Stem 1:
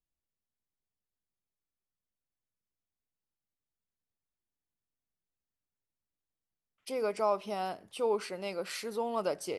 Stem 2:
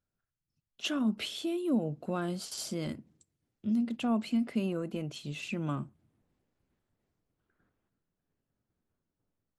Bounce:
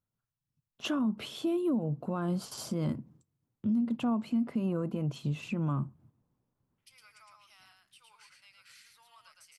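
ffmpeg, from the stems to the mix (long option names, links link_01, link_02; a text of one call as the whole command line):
ffmpeg -i stem1.wav -i stem2.wav -filter_complex "[0:a]highpass=frequency=1400:width=0.5412,highpass=frequency=1400:width=1.3066,acompressor=threshold=-53dB:ratio=2.5,volume=-7dB,asplit=2[link_01][link_02];[link_02]volume=-3.5dB[link_03];[1:a]equalizer=frequency=125:width_type=o:width=1:gain=11,equalizer=frequency=250:width_type=o:width=1:gain=5,equalizer=frequency=500:width_type=o:width=1:gain=8,equalizer=frequency=1000:width_type=o:width=1:gain=12,equalizer=frequency=2000:width_type=o:width=1:gain=-4,equalizer=frequency=4000:width_type=o:width=1:gain=-4,equalizer=frequency=8000:width_type=o:width=1:gain=-5,agate=range=-8dB:threshold=-56dB:ratio=16:detection=peak,equalizer=frequency=540:width=0.68:gain=-8,volume=1.5dB[link_04];[link_03]aecho=0:1:111:1[link_05];[link_01][link_04][link_05]amix=inputs=3:normalize=0,alimiter=limit=-23dB:level=0:latency=1:release=270" out.wav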